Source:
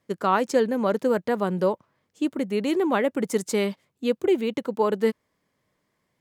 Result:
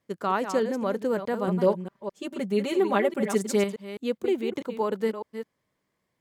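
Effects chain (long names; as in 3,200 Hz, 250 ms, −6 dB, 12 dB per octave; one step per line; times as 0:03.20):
delay that plays each chunk backwards 209 ms, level −9 dB
0:01.47–0:03.64: comb filter 5.1 ms, depth 97%
level −4.5 dB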